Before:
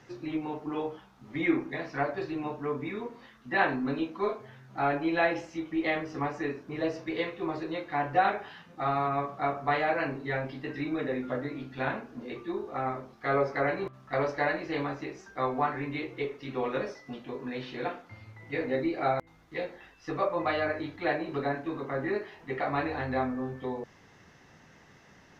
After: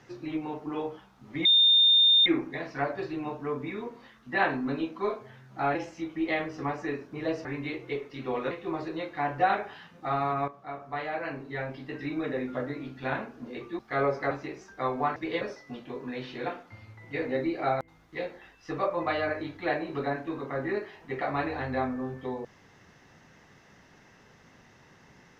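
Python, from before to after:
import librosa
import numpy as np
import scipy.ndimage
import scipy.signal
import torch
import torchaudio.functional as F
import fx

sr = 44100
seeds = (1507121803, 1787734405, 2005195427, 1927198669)

y = fx.edit(x, sr, fx.insert_tone(at_s=1.45, length_s=0.81, hz=3630.0, db=-16.5),
    fx.cut(start_s=4.94, length_s=0.37),
    fx.swap(start_s=7.01, length_s=0.25, other_s=15.74, other_length_s=1.06),
    fx.fade_in_from(start_s=9.23, length_s=1.72, floor_db=-12.5),
    fx.cut(start_s=12.54, length_s=0.58),
    fx.cut(start_s=13.64, length_s=1.25), tone=tone)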